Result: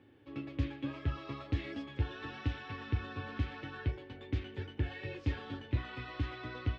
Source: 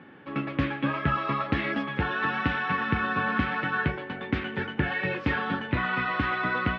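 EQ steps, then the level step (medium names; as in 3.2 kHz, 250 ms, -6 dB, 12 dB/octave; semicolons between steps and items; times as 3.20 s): FFT filter 110 Hz 0 dB, 180 Hz -25 dB, 290 Hz -8 dB, 1.4 kHz -22 dB, 6.7 kHz -1 dB; 0.0 dB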